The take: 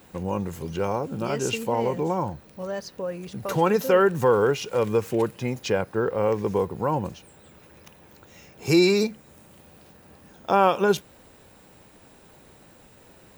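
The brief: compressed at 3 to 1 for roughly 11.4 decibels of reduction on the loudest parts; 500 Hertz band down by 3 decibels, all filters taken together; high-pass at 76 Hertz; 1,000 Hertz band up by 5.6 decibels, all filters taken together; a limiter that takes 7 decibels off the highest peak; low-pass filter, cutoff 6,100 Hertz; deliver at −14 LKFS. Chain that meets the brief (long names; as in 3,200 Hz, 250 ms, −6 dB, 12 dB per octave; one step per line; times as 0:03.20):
high-pass filter 76 Hz
low-pass filter 6,100 Hz
parametric band 500 Hz −5.5 dB
parametric band 1,000 Hz +8.5 dB
downward compressor 3 to 1, threshold −26 dBFS
level +17.5 dB
brickwall limiter −1.5 dBFS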